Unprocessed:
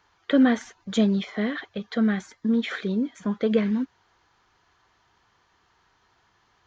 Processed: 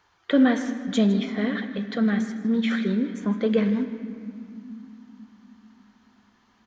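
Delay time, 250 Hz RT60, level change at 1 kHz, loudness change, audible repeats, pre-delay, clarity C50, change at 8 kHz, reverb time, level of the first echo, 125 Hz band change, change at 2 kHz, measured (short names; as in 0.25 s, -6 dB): 0.158 s, 4.7 s, +0.5 dB, +1.0 dB, 1, 5 ms, 9.5 dB, n/a, 2.9 s, -15.5 dB, n/a, +0.5 dB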